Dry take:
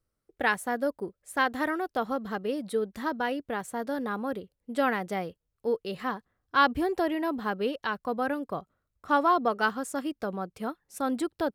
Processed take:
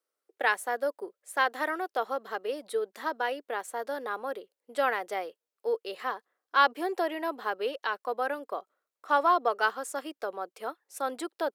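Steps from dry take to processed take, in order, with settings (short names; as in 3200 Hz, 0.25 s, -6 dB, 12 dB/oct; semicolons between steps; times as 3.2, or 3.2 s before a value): HPF 390 Hz 24 dB/oct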